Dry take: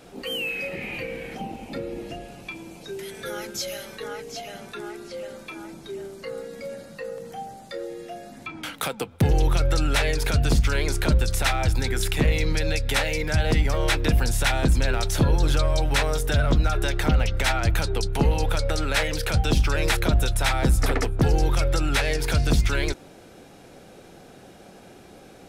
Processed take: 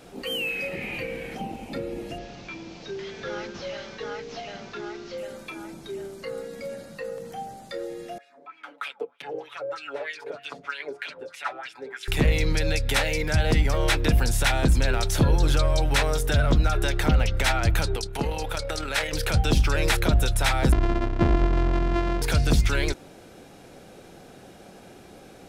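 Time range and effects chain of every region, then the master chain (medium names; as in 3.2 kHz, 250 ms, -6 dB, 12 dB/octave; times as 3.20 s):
2.18–5.18 s: one-bit delta coder 32 kbps, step -42 dBFS + tape noise reduction on one side only encoder only
8.18–12.08 s: high-pass 230 Hz + wah-wah 3.2 Hz 440–2900 Hz, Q 3.4 + comb 7 ms, depth 80%
17.96–19.13 s: bass shelf 300 Hz -8 dB + AM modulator 39 Hz, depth 25%
20.72–22.22 s: sorted samples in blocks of 128 samples + tape spacing loss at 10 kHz 30 dB + tape noise reduction on one side only encoder only
whole clip: none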